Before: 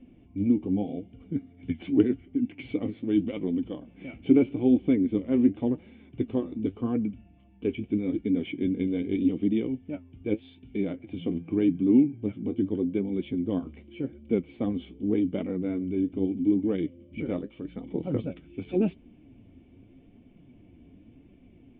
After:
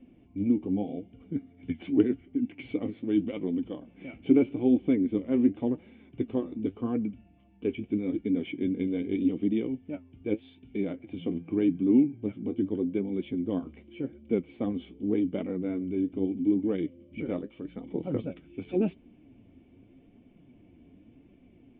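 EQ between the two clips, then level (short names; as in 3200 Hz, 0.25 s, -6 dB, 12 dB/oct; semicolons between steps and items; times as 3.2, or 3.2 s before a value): air absorption 110 m; low shelf 150 Hz -6.5 dB; 0.0 dB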